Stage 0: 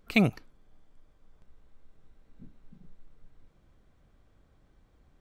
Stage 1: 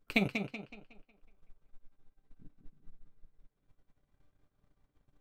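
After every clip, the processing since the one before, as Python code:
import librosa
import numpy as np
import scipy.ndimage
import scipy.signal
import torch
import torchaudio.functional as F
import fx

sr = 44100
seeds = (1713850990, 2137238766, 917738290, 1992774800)

y = fx.resonator_bank(x, sr, root=43, chord='sus4', decay_s=0.2)
y = fx.transient(y, sr, attack_db=11, sustain_db=-11)
y = fx.echo_tape(y, sr, ms=186, feedback_pct=43, wet_db=-4.5, lp_hz=5700.0, drive_db=16.0, wow_cents=37)
y = y * 10.0 ** (-2.0 / 20.0)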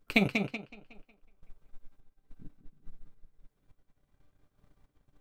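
y = fx.tremolo_random(x, sr, seeds[0], hz=3.5, depth_pct=55)
y = y * 10.0 ** (7.0 / 20.0)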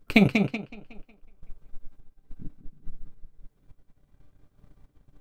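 y = fx.low_shelf(x, sr, hz=430.0, db=7.0)
y = y * 10.0 ** (3.5 / 20.0)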